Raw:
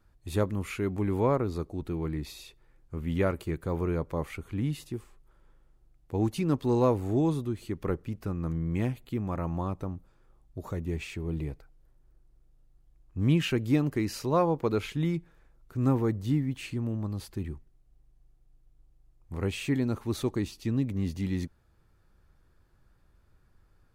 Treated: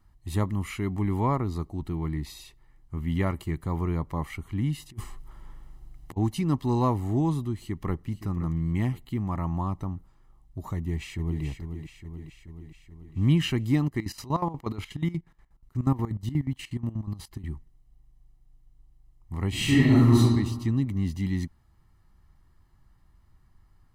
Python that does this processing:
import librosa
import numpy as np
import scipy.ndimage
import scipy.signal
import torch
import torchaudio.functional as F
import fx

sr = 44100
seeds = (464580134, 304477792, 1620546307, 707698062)

y = fx.over_compress(x, sr, threshold_db=-43.0, ratio=-0.5, at=(4.89, 6.16), fade=0.02)
y = fx.echo_throw(y, sr, start_s=7.54, length_s=0.54, ms=520, feedback_pct=35, wet_db=-12.5)
y = fx.echo_throw(y, sr, start_s=10.75, length_s=0.68, ms=430, feedback_pct=65, wet_db=-8.0)
y = fx.chopper(y, sr, hz=8.3, depth_pct=80, duty_pct=50, at=(13.82, 17.44))
y = fx.reverb_throw(y, sr, start_s=19.49, length_s=0.68, rt60_s=1.3, drr_db=-9.5)
y = y + 0.64 * np.pad(y, (int(1.0 * sr / 1000.0), 0))[:len(y)]